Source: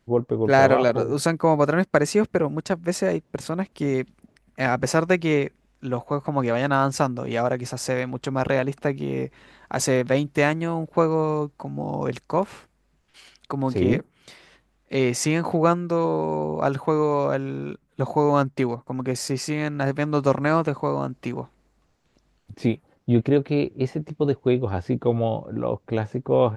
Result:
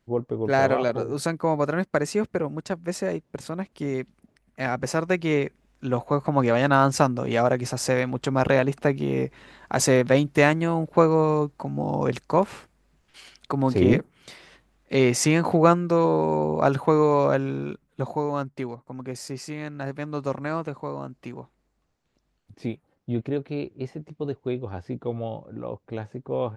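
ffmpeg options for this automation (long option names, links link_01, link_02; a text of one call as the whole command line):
ffmpeg -i in.wav -af "volume=2dB,afade=type=in:start_time=5.01:duration=1.02:silence=0.473151,afade=type=out:start_time=17.43:duration=0.87:silence=0.316228" out.wav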